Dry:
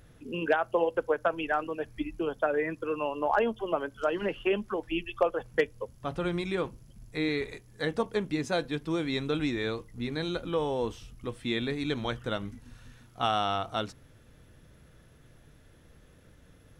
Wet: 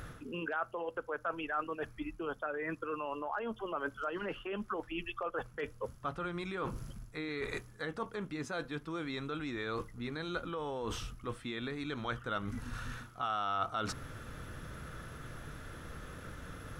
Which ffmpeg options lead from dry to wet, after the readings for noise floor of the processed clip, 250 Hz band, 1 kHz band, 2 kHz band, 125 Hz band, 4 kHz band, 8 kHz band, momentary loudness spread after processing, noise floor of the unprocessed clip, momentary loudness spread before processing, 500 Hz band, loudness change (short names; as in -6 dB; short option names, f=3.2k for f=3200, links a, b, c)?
-55 dBFS, -8.0 dB, -5.5 dB, -5.0 dB, -5.5 dB, -8.5 dB, -0.5 dB, 10 LU, -57 dBFS, 8 LU, -10.0 dB, -8.5 dB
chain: -af "alimiter=limit=-24dB:level=0:latency=1:release=85,areverse,acompressor=threshold=-46dB:ratio=16,areverse,equalizer=f=1.3k:t=o:w=0.67:g=11,volume=9.5dB"